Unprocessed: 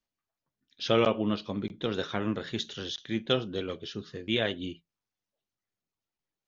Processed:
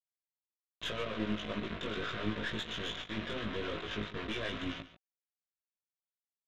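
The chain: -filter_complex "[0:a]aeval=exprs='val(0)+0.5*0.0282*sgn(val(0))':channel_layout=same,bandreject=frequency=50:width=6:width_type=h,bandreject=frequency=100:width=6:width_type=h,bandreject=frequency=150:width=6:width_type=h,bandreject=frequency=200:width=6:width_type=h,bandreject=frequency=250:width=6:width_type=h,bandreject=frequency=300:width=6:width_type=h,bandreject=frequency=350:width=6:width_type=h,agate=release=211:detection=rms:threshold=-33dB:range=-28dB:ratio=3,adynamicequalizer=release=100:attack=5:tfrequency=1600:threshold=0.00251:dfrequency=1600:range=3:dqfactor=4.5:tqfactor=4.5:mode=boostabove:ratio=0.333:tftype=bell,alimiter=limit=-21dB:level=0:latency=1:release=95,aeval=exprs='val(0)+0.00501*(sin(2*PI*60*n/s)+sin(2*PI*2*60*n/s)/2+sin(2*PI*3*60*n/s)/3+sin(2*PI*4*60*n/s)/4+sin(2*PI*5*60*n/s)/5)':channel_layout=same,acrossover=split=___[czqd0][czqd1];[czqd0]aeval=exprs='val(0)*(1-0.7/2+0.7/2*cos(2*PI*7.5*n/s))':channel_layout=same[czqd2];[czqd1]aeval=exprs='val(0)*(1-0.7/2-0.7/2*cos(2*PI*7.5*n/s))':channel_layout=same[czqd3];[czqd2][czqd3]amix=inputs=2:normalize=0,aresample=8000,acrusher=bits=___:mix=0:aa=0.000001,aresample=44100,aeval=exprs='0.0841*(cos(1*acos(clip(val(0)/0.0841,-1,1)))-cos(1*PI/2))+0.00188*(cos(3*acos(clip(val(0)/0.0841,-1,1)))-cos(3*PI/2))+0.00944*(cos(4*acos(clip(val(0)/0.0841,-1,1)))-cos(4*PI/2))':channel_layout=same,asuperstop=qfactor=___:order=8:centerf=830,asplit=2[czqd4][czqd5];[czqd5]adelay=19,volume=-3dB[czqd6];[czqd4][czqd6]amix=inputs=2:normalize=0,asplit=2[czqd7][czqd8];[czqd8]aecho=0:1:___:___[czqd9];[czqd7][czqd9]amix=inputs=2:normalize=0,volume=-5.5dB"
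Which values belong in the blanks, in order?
460, 5, 6.5, 142, 0.178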